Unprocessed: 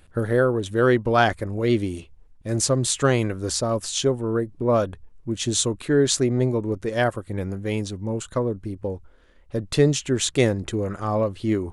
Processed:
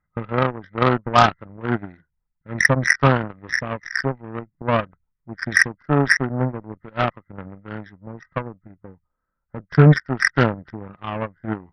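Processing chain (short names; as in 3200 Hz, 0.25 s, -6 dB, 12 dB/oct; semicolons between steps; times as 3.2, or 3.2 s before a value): nonlinear frequency compression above 1200 Hz 4:1; fifteen-band EQ 160 Hz +11 dB, 400 Hz -7 dB, 1000 Hz +7 dB; added harmonics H 5 -30 dB, 7 -16 dB, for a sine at -2 dBFS; gain +2 dB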